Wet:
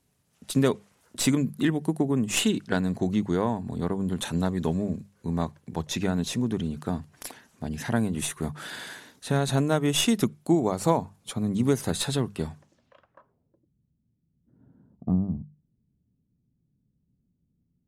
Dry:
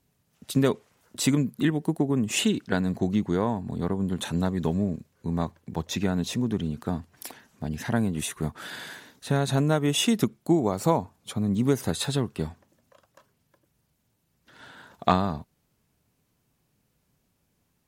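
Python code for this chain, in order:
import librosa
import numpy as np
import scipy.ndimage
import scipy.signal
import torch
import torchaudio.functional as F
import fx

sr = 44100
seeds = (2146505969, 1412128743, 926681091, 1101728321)

y = fx.tracing_dist(x, sr, depth_ms=0.04)
y = fx.hum_notches(y, sr, base_hz=50, count=4)
y = fx.filter_sweep_lowpass(y, sr, from_hz=11000.0, to_hz=210.0, start_s=12.55, end_s=13.72, q=1.4)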